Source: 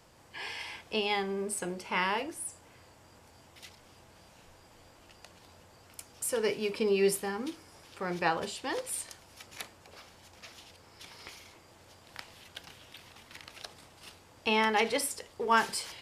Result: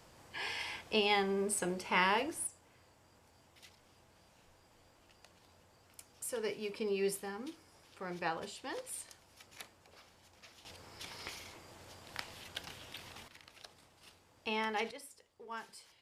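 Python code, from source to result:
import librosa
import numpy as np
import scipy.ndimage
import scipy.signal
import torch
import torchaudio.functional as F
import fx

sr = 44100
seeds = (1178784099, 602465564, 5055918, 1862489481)

y = fx.gain(x, sr, db=fx.steps((0.0, 0.0), (2.47, -8.0), (10.65, 2.0), (13.28, -9.0), (14.91, -19.5)))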